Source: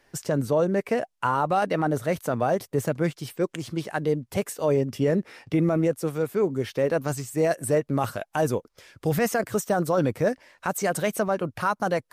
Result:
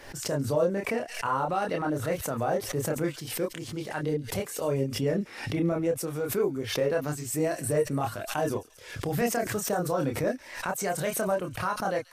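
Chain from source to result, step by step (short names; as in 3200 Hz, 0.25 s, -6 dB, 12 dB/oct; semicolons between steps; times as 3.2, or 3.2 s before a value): chorus voices 6, 0.25 Hz, delay 28 ms, depth 2.1 ms; thin delay 0.138 s, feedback 46%, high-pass 3700 Hz, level -12.5 dB; backwards sustainer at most 84 dB/s; gain -1.5 dB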